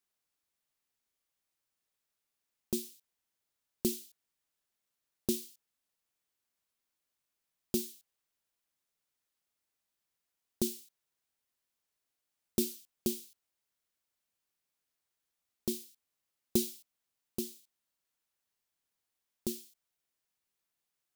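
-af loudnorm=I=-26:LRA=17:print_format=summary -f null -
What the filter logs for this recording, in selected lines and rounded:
Input Integrated:    -37.4 LUFS
Input True Peak:     -12.7 dBTP
Input LRA:             8.0 LU
Input Threshold:     -48.5 LUFS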